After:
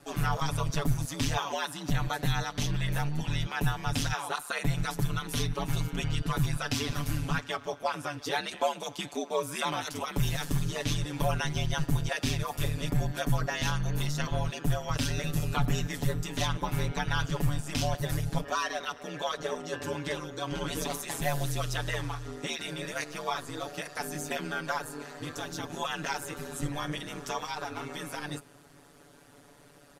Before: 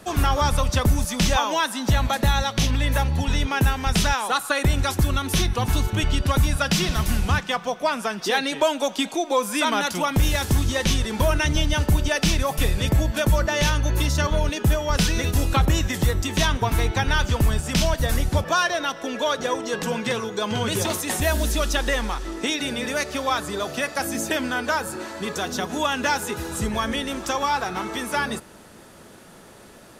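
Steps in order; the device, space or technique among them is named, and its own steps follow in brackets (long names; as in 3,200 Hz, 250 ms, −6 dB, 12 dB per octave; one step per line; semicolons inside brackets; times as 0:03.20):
ring-modulated robot voice (ring modulation 75 Hz; comb filter 7 ms, depth 83%)
level −9 dB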